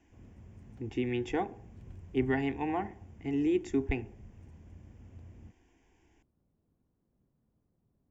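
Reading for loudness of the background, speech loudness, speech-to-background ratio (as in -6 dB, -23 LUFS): -53.0 LUFS, -33.5 LUFS, 19.5 dB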